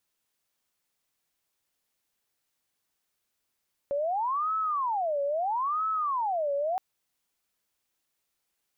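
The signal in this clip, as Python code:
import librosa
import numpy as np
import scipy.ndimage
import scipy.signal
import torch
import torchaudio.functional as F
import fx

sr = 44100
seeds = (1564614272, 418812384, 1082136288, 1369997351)

y = fx.siren(sr, length_s=2.87, kind='wail', low_hz=562.0, high_hz=1300.0, per_s=0.76, wave='sine', level_db=-25.5)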